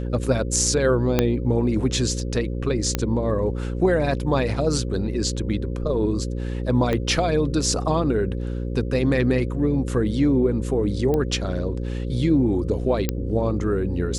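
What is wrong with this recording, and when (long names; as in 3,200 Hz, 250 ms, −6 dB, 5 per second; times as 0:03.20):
mains buzz 60 Hz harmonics 9 −27 dBFS
0:01.19: click −4 dBFS
0:02.95: click −7 dBFS
0:06.93: click −12 dBFS
0:11.14: click −13 dBFS
0:13.09: click −7 dBFS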